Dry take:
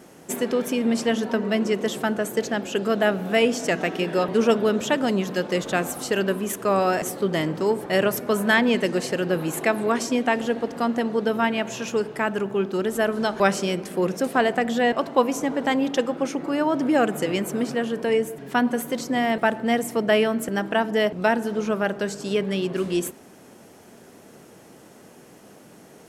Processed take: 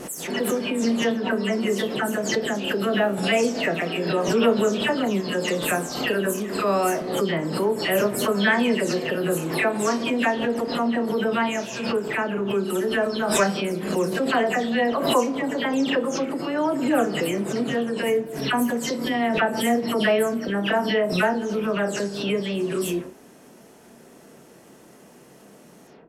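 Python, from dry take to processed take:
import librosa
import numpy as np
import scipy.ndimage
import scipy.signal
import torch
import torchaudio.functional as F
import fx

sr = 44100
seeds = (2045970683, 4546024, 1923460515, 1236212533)

y = fx.spec_delay(x, sr, highs='early', ms=209)
y = fx.room_flutter(y, sr, wall_m=5.1, rt60_s=0.2)
y = fx.pre_swell(y, sr, db_per_s=56.0)
y = F.gain(torch.from_numpy(y), -1.5).numpy()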